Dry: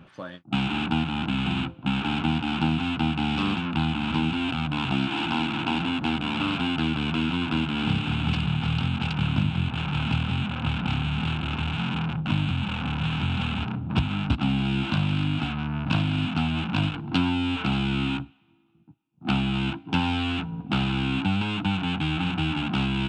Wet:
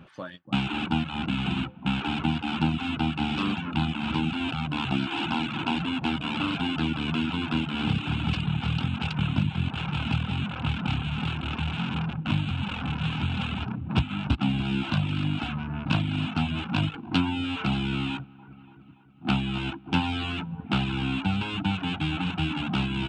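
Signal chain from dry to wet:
delay with a low-pass on its return 288 ms, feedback 55%, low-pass 1,800 Hz, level −14.5 dB
reverb reduction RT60 0.77 s

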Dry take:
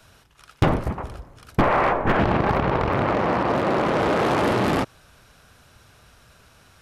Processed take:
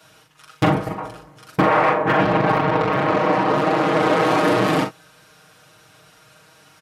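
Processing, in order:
Bessel high-pass filter 160 Hz, order 2
comb filter 6.4 ms, depth 97%
ambience of single reflections 41 ms −6.5 dB, 61 ms −16 dB

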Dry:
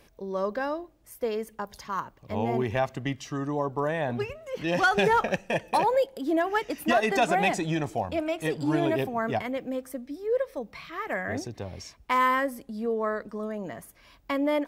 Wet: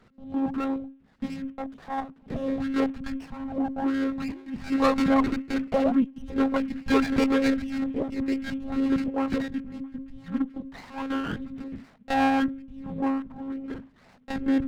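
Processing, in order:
one-pitch LPC vocoder at 8 kHz 270 Hz
frequency shifter −270 Hz
windowed peak hold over 9 samples
level +1 dB

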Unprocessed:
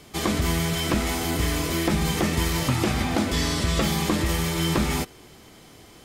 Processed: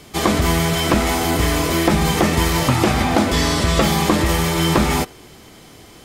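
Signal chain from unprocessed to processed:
dynamic equaliser 790 Hz, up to +5 dB, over −37 dBFS, Q 0.71
level +5.5 dB

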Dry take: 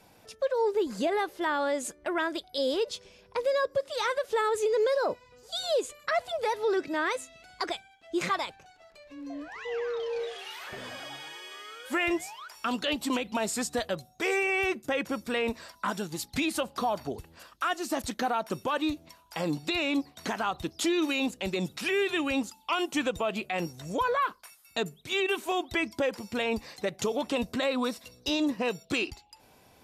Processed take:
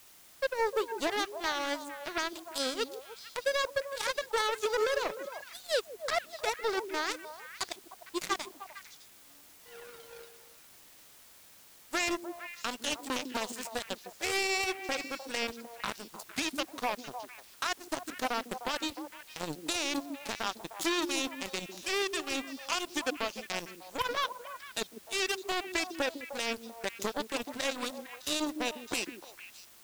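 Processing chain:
power curve on the samples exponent 3
bass and treble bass −2 dB, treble +5 dB
in parallel at −8.5 dB: bit-depth reduction 8 bits, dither triangular
on the sum: echo through a band-pass that steps 152 ms, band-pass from 280 Hz, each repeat 1.4 octaves, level −4.5 dB

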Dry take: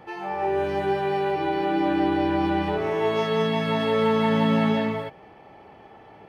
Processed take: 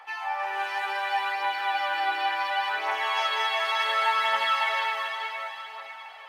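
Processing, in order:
high-pass filter 930 Hz 24 dB per octave
on a send: feedback delay with all-pass diffusion 452 ms, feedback 49%, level −6 dB
on the sum: phase shifter 0.69 Hz, delay 3 ms, feedback 37%
level +4 dB

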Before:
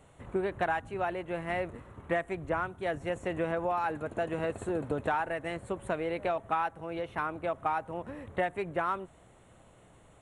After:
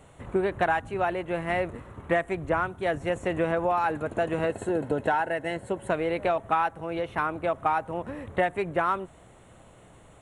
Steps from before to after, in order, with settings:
0:04.48–0:05.90: notch comb filter 1,200 Hz
level +5.5 dB

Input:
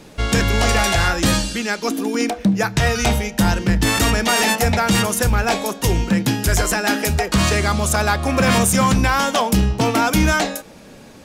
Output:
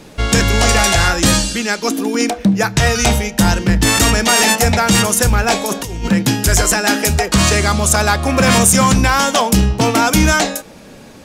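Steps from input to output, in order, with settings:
dynamic equaliser 7,300 Hz, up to +5 dB, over −33 dBFS, Q 0.94
0:05.66–0:06.08: compressor whose output falls as the input rises −25 dBFS, ratio −1
level +3.5 dB

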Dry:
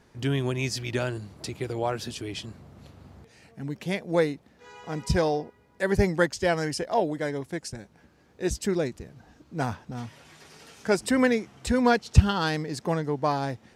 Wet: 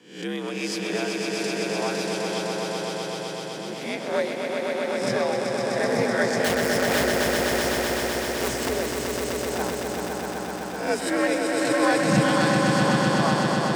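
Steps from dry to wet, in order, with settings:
peak hold with a rise ahead of every peak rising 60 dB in 0.54 s
high-pass filter 150 Hz 6 dB per octave
0:06.44–0:08.69: wrap-around overflow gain 19 dB
on a send: echo that builds up and dies away 127 ms, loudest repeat 5, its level −4.5 dB
on the sum: frequency shifter +63 Hz
level −3 dB

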